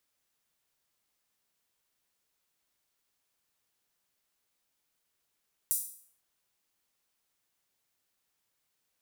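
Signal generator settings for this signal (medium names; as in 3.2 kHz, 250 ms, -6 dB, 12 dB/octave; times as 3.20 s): open hi-hat length 0.50 s, high-pass 9 kHz, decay 0.54 s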